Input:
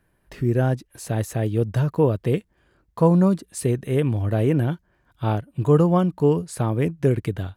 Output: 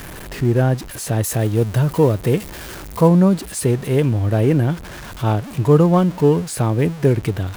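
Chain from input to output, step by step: zero-crossing step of -31.5 dBFS; 1.24–3.08 high shelf 7400 Hz +7.5 dB; gain +3.5 dB

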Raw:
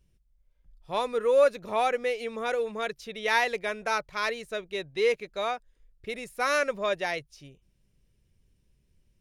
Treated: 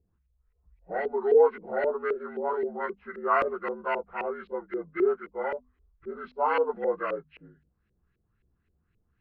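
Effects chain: inharmonic rescaling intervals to 77%; LFO low-pass saw up 3.8 Hz 420–2400 Hz; notches 50/100/150/200/250 Hz; gain -2 dB

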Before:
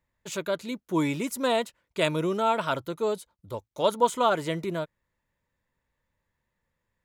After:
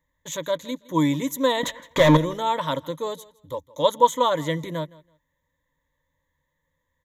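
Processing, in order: 1.63–2.17 overdrive pedal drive 34 dB, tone 1400 Hz, clips at -9.5 dBFS; ripple EQ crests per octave 1.1, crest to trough 14 dB; feedback echo 0.164 s, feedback 20%, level -21.5 dB

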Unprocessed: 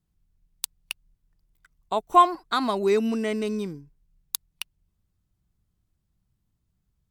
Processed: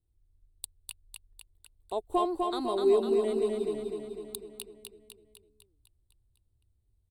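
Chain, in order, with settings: soft clip -11 dBFS, distortion -15 dB; EQ curve 110 Hz 0 dB, 160 Hz -21 dB, 360 Hz -1 dB, 800 Hz -10 dB, 1400 Hz -20 dB, 2300 Hz -19 dB, 4100 Hz -8 dB, 5900 Hz -28 dB, 8700 Hz -3 dB, 13000 Hz -15 dB; feedback echo 0.251 s, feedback 58%, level -3.5 dB; gain +1.5 dB

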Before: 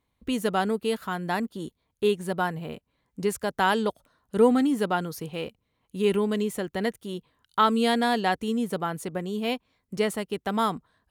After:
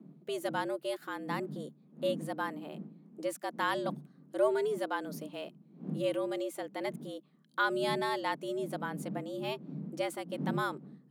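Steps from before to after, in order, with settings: wind noise 92 Hz -36 dBFS; frequency shift +140 Hz; gain -9 dB

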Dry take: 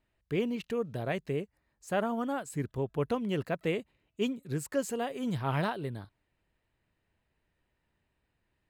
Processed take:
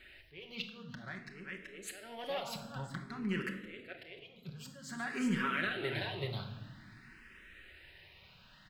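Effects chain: in parallel at -4 dB: soft clip -35 dBFS, distortion -7 dB; on the sum: band shelf 2600 Hz +13 dB 2.3 oct; echo 0.379 s -12.5 dB; compressor 16:1, threshold -41 dBFS, peak gain reduction 23 dB; auto swell 0.452 s; reverb RT60 1.3 s, pre-delay 5 ms, DRR 2.5 dB; endless phaser +0.52 Hz; gain +10.5 dB

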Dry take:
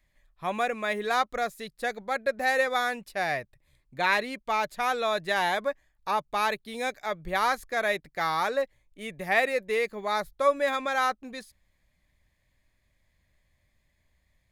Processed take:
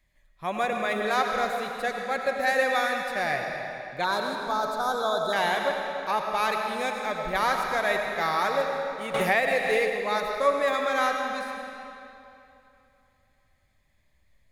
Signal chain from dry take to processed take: 4.04–5.33 elliptic band-stop 1500–3500 Hz; digital reverb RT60 2.9 s, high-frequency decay 0.85×, pre-delay 50 ms, DRR 2 dB; 9.14–9.9 three-band squash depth 100%

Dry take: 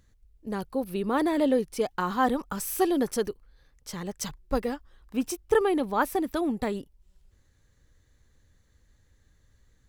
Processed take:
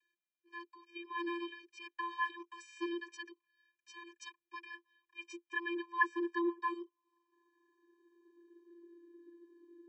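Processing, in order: tilt -4 dB/oct; vocoder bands 32, square 343 Hz; high-pass sweep 2300 Hz -> 290 Hz, 5.66–9.12; gain +8.5 dB

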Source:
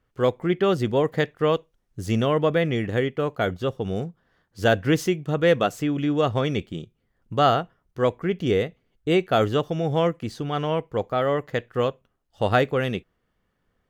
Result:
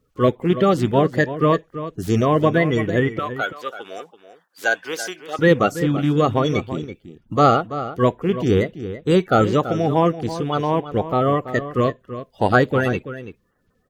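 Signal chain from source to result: bin magnitudes rounded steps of 30 dB; 3.19–5.39 HPF 850 Hz 12 dB/oct; outdoor echo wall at 57 m, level -12 dB; gain +5 dB

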